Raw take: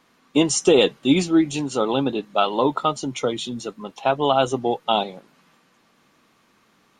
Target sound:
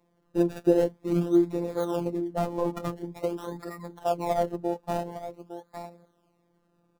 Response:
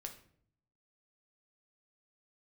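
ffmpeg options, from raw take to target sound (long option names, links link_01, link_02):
-filter_complex "[0:a]lowpass=frequency=1600:poles=1,aecho=1:1:859:0.251,acrossover=split=1000[link_01][link_02];[link_02]acrusher=samples=28:mix=1:aa=0.000001:lfo=1:lforange=28:lforate=0.47[link_03];[link_01][link_03]amix=inputs=2:normalize=0,afftfilt=real='hypot(re,im)*cos(PI*b)':imag='0':win_size=1024:overlap=0.75,volume=-2.5dB"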